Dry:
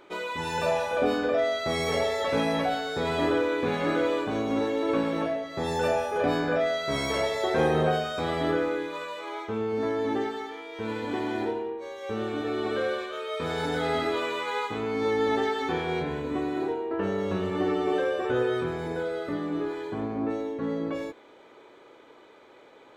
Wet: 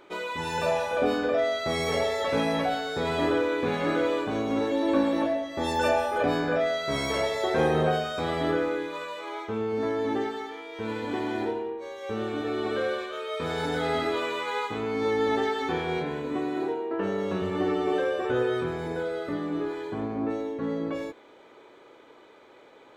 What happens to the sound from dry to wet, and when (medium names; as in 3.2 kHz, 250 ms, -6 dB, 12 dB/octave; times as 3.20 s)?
4.71–6.23 s: comb 3.4 ms
15.98–17.42 s: high-pass 130 Hz